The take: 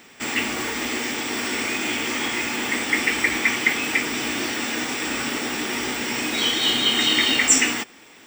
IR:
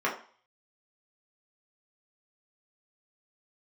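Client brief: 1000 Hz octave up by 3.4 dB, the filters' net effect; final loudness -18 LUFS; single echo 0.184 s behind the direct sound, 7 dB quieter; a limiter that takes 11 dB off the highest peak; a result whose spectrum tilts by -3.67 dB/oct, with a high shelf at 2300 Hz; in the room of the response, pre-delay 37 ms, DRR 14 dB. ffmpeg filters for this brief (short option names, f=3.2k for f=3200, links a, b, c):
-filter_complex "[0:a]equalizer=f=1k:t=o:g=6,highshelf=f=2.3k:g=-8,alimiter=limit=-17dB:level=0:latency=1,aecho=1:1:184:0.447,asplit=2[a][b];[1:a]atrim=start_sample=2205,adelay=37[c];[b][c]afir=irnorm=-1:irlink=0,volume=-25.5dB[d];[a][d]amix=inputs=2:normalize=0,volume=7.5dB"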